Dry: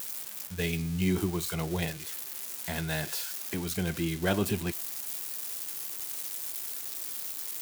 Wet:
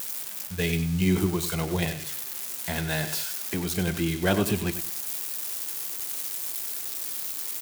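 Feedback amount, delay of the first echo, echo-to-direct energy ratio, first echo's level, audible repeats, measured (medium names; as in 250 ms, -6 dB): 24%, 96 ms, -10.5 dB, -11.0 dB, 2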